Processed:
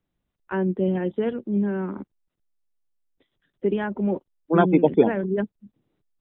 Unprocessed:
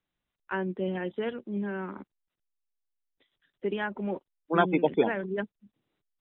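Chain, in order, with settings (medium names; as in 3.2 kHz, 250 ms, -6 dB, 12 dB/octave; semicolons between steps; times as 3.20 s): tilt shelf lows +6.5 dB, about 720 Hz; trim +4 dB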